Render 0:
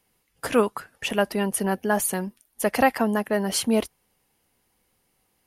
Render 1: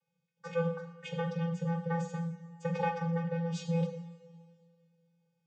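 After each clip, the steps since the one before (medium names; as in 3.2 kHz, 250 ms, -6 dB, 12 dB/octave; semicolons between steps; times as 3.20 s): vocoder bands 16, square 168 Hz; two-slope reverb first 0.61 s, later 2.2 s, from -17 dB, DRR 2 dB; trim -5.5 dB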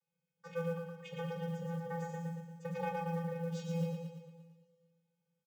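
feedback delay 115 ms, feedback 54%, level -4 dB; short-mantissa float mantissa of 4-bit; trim -7.5 dB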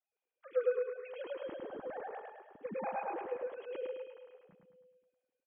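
formants replaced by sine waves; on a send: feedback delay 105 ms, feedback 42%, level -3.5 dB; on the sum: trim -2.5 dB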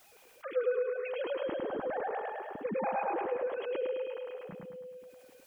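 level flattener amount 50%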